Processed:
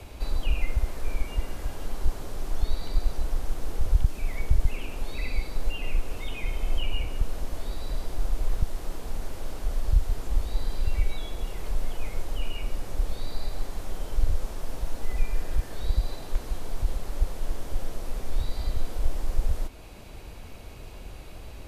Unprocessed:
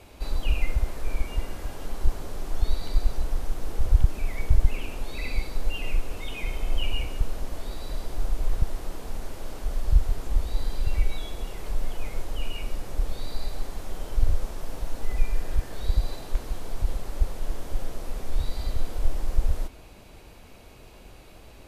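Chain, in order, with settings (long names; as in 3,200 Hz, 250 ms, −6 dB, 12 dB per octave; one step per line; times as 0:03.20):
multiband upward and downward compressor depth 40%
level −1 dB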